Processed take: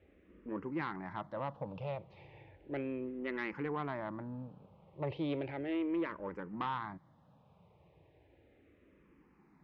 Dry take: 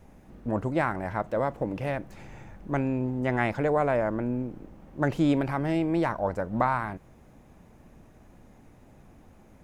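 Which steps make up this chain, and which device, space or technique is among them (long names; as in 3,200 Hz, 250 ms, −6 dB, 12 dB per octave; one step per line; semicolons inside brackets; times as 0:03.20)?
barber-pole phaser into a guitar amplifier (frequency shifter mixed with the dry sound −0.35 Hz; soft clipping −22.5 dBFS, distortion −17 dB; loudspeaker in its box 96–3,700 Hz, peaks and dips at 120 Hz −4 dB, 230 Hz −9 dB, 700 Hz −6 dB, 1,500 Hz −6 dB)
level −4 dB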